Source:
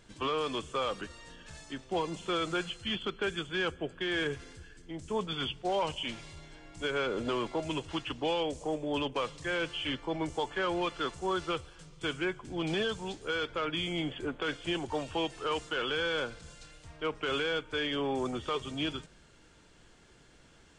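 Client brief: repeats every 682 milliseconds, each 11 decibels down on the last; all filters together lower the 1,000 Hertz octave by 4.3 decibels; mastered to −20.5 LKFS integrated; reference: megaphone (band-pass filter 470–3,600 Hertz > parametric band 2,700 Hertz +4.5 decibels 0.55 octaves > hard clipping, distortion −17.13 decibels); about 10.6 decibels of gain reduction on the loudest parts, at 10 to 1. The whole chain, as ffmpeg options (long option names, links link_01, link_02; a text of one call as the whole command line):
ffmpeg -i in.wav -af "equalizer=frequency=1000:width_type=o:gain=-5.5,acompressor=threshold=-40dB:ratio=10,highpass=470,lowpass=3600,equalizer=frequency=2700:width_type=o:width=0.55:gain=4.5,aecho=1:1:682|1364|2046:0.282|0.0789|0.0221,asoftclip=type=hard:threshold=-39dB,volume=25.5dB" out.wav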